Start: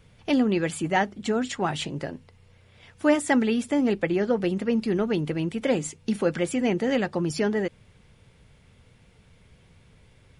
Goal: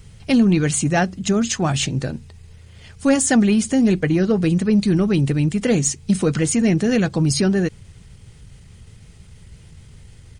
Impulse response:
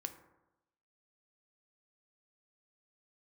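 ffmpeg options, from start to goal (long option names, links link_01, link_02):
-af "bass=frequency=250:gain=10,treble=frequency=4000:gain=12,acontrast=86,asetrate=40440,aresample=44100,atempo=1.09051,volume=-3.5dB"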